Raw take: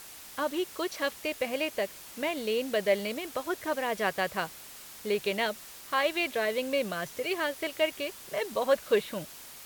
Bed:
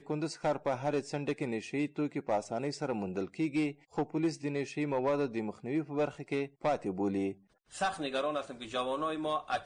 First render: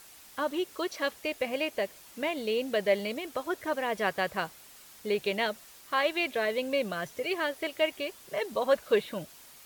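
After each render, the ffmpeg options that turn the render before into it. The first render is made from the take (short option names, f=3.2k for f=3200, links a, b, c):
-af "afftdn=nr=6:nf=-47"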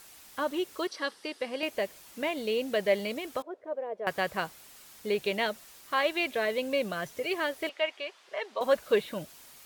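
-filter_complex "[0:a]asettb=1/sr,asplit=3[a][b][c];[a]atrim=end=0.874[d];[b]atrim=start=0.87:end=1.63,asetpts=PTS-STARTPTS,afade=t=in:d=0.004:c=qsin,afade=t=out:st=0.756:d=0.004:c=qsin,highpass=240,equalizer=f=650:t=q:w=4:g=-10,equalizer=f=2.4k:t=q:w=4:g=-8,equalizer=f=4.8k:t=q:w=4:g=4,equalizer=f=6.9k:t=q:w=4:g=-9,lowpass=f=9.6k:w=0.5412,lowpass=f=9.6k:w=1.3066[e];[c]atrim=start=1.626[f];[d][e]acrossfade=d=0.004:c1=hsin:c2=qsin[g];[g][f]acrossfade=d=0.004:c1=qsin:c2=hsin,asettb=1/sr,asplit=3[h][i][j];[h]atrim=end=3.424[k];[i]atrim=start=3.42:end=4.07,asetpts=PTS-STARTPTS,afade=t=in:d=0.004:c=qsin,afade=t=out:st=0.646:d=0.004:c=qsin,bandpass=f=530:t=q:w=3[l];[j]atrim=start=4.066[m];[k][l]acrossfade=d=0.004:c1=hsin:c2=qsin[n];[n][m]acrossfade=d=0.004:c1=qsin:c2=hsin,asettb=1/sr,asplit=3[o][p][q];[o]atrim=end=7.694[r];[p]atrim=start=7.69:end=8.61,asetpts=PTS-STARTPTS,afade=t=in:d=0.004:c=qsin,afade=t=out:st=0.916:d=0.004:c=qsin,highpass=610,lowpass=4.1k[s];[q]atrim=start=8.606[t];[r][s]acrossfade=d=0.004:c1=hsin:c2=qsin[u];[u][t]acrossfade=d=0.004:c1=qsin:c2=hsin"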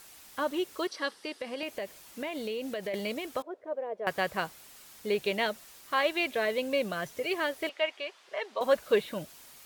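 -filter_complex "[0:a]asettb=1/sr,asplit=3[a][b][c];[a]atrim=end=1.144[d];[b]atrim=start=1.14:end=2.94,asetpts=PTS-STARTPTS,afade=t=in:d=0.004:c=qsin,afade=t=out:st=1.796:d=0.004:c=qsin,acompressor=threshold=-31dB:ratio=6:attack=3.2:release=140:knee=1:detection=peak[e];[c]atrim=start=2.936[f];[d][e]acrossfade=d=0.004:c1=hsin:c2=qsin[g];[g][f]acrossfade=d=0.004:c1=qsin:c2=hsin"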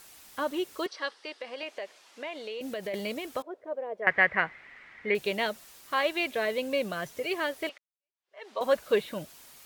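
-filter_complex "[0:a]asettb=1/sr,asplit=3[a][b][c];[a]atrim=end=0.864[d];[b]atrim=start=0.86:end=2.61,asetpts=PTS-STARTPTS,afade=t=in:d=0.004:c=qsin,afade=t=out:st=1.746:d=0.004:c=qsin,highpass=450,lowpass=5.5k[e];[c]atrim=start=2.606[f];[d][e]acrossfade=d=0.004:c1=hsin:c2=qsin[g];[g][f]acrossfade=d=0.004:c1=qsin:c2=hsin,asettb=1/sr,asplit=3[h][i][j];[h]atrim=end=4.024[k];[i]atrim=start=4.02:end=5.15,asetpts=PTS-STARTPTS,afade=t=in:d=0.004:c=qsin,afade=t=out:st=1.126:d=0.004:c=qsin,lowpass=f=2k:t=q:w=8.1[l];[j]atrim=start=5.146[m];[k][l]acrossfade=d=0.004:c1=hsin:c2=qsin[n];[n][m]acrossfade=d=0.004:c1=qsin:c2=hsin,asplit=2[o][p];[o]atrim=end=7.78,asetpts=PTS-STARTPTS,afade=t=out:st=7.776:d=0.004:c=hsin[q];[p]atrim=start=7.78,asetpts=PTS-STARTPTS,afade=t=in:d=0.7:c=exp[r];[q][r]concat=n=2:v=0:a=1"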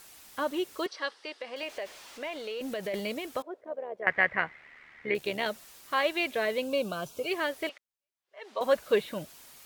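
-filter_complex "[0:a]asettb=1/sr,asplit=3[a][b][c];[a]atrim=end=1.564[d];[b]atrim=start=1.56:end=3,asetpts=PTS-STARTPTS,afade=t=in:d=0.004:c=qsin,afade=t=out:st=1.436:d=0.004:c=qsin,aeval=exprs='val(0)+0.5*0.00447*sgn(val(0))':c=same[e];[c]atrim=start=2.996[f];[d][e]acrossfade=d=0.004:c1=hsin:c2=qsin[g];[g][f]acrossfade=d=0.004:c1=qsin:c2=hsin,asettb=1/sr,asplit=3[h][i][j];[h]atrim=end=3.614[k];[i]atrim=start=3.61:end=5.46,asetpts=PTS-STARTPTS,afade=t=in:d=0.004:c=qsin,afade=t=out:st=1.846:d=0.004:c=qsin,tremolo=f=74:d=0.519[l];[j]atrim=start=5.456[m];[k][l]acrossfade=d=0.004:c1=hsin:c2=qsin[n];[n][m]acrossfade=d=0.004:c1=qsin:c2=hsin,asettb=1/sr,asplit=3[o][p][q];[o]atrim=end=6.644[r];[p]atrim=start=6.64:end=7.28,asetpts=PTS-STARTPTS,afade=t=in:d=0.004:c=qsin,afade=t=out:st=0.636:d=0.004:c=qsin,asuperstop=centerf=1900:order=4:qfactor=2.2[s];[q]atrim=start=7.276[t];[r][s]acrossfade=d=0.004:c1=hsin:c2=qsin[u];[u][t]acrossfade=d=0.004:c1=qsin:c2=hsin"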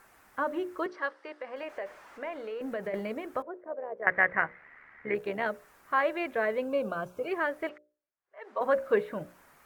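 -af "highshelf=f=2.4k:t=q:w=1.5:g=-13.5,bandreject=f=60:t=h:w=6,bandreject=f=120:t=h:w=6,bandreject=f=180:t=h:w=6,bandreject=f=240:t=h:w=6,bandreject=f=300:t=h:w=6,bandreject=f=360:t=h:w=6,bandreject=f=420:t=h:w=6,bandreject=f=480:t=h:w=6,bandreject=f=540:t=h:w=6,bandreject=f=600:t=h:w=6"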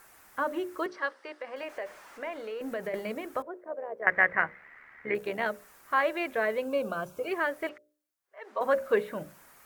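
-af "highshelf=f=4k:g=9,bandreject=f=50:t=h:w=6,bandreject=f=100:t=h:w=6,bandreject=f=150:t=h:w=6,bandreject=f=200:t=h:w=6,bandreject=f=250:t=h:w=6,bandreject=f=300:t=h:w=6"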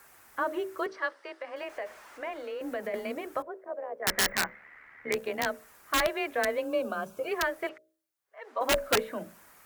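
-af "aeval=exprs='(mod(7.5*val(0)+1,2)-1)/7.5':c=same,afreqshift=23"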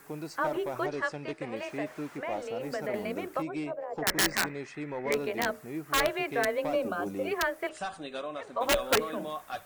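-filter_complex "[1:a]volume=-4.5dB[a];[0:a][a]amix=inputs=2:normalize=0"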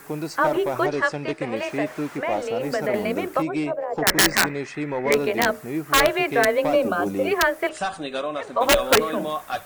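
-af "volume=9.5dB,alimiter=limit=-2dB:level=0:latency=1"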